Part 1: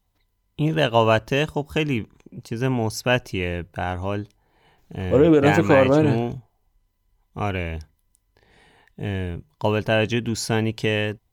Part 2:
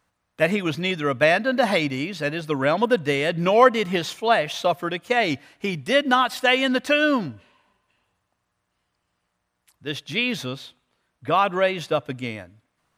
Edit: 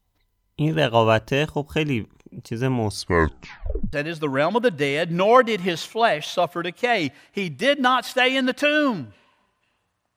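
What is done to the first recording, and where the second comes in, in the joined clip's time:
part 1
0:02.81: tape stop 1.12 s
0:03.93: continue with part 2 from 0:02.20

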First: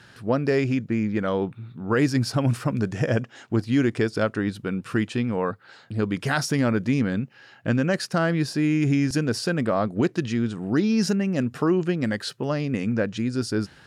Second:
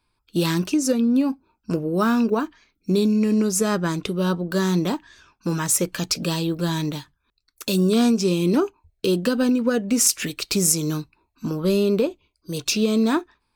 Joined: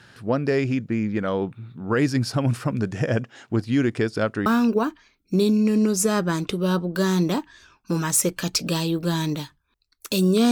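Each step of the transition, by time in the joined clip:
first
0:04.46: continue with second from 0:02.02

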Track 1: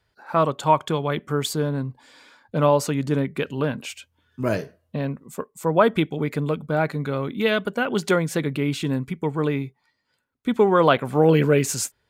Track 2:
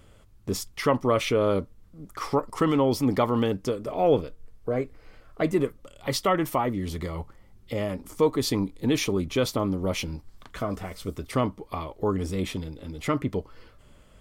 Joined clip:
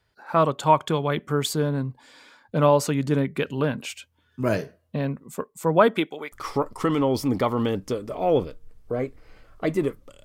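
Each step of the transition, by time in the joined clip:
track 1
0:05.86–0:06.32: high-pass filter 170 Hz → 970 Hz
0:06.32: continue with track 2 from 0:02.09

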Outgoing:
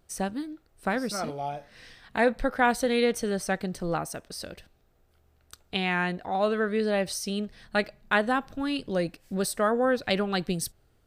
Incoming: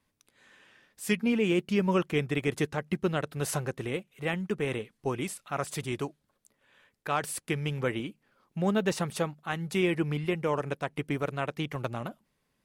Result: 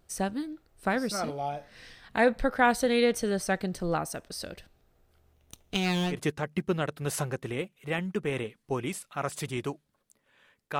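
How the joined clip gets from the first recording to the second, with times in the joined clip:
outgoing
0:05.33–0:06.22: lower of the sound and its delayed copy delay 0.31 ms
0:06.15: continue with incoming from 0:02.50, crossfade 0.14 s

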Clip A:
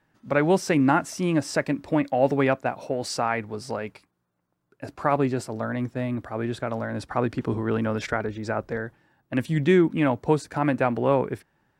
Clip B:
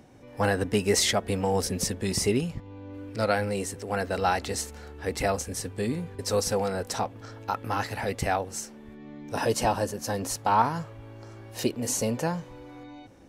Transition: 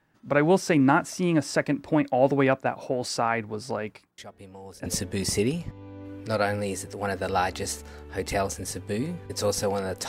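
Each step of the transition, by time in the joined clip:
clip A
0:04.18: mix in clip B from 0:01.07 0.68 s −18 dB
0:04.86: continue with clip B from 0:01.75

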